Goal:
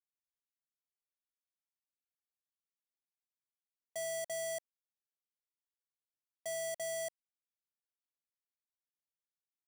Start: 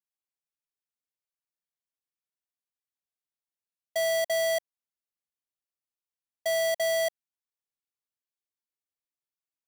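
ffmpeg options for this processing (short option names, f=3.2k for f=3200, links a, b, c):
-af "alimiter=level_in=10.5dB:limit=-24dB:level=0:latency=1,volume=-10.5dB,equalizer=f=250:t=o:w=1:g=5,equalizer=f=500:t=o:w=1:g=-4,equalizer=f=1k:t=o:w=1:g=-12,equalizer=f=2k:t=o:w=1:g=-4,equalizer=f=4k:t=o:w=1:g=-12,equalizer=f=8k:t=o:w=1:g=9,equalizer=f=16k:t=o:w=1:g=-10,aeval=exprs='val(0)*gte(abs(val(0)),0.00224)':c=same,volume=3.5dB"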